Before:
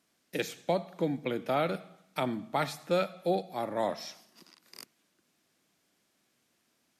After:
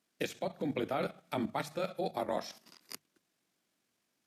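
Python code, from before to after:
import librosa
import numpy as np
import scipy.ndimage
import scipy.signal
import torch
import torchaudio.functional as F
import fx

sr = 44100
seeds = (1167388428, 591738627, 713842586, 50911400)

y = fx.level_steps(x, sr, step_db=12)
y = fx.stretch_grains(y, sr, factor=0.61, grain_ms=44.0)
y = fx.hum_notches(y, sr, base_hz=50, count=3)
y = y * librosa.db_to_amplitude(4.5)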